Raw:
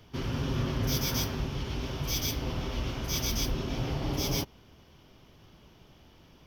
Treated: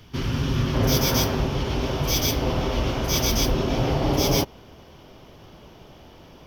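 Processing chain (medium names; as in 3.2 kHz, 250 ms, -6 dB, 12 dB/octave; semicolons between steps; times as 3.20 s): peaking EQ 600 Hz -4 dB 1.7 oct, from 0.74 s +6.5 dB; trim +7.5 dB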